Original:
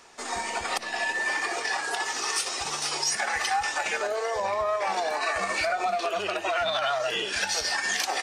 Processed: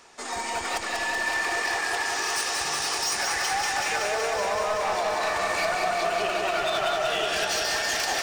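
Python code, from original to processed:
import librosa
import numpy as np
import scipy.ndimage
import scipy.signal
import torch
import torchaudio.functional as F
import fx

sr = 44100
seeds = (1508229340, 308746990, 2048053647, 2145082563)

y = np.clip(x, -10.0 ** (-25.0 / 20.0), 10.0 ** (-25.0 / 20.0))
y = fx.echo_crushed(y, sr, ms=188, feedback_pct=80, bits=11, wet_db=-4.0)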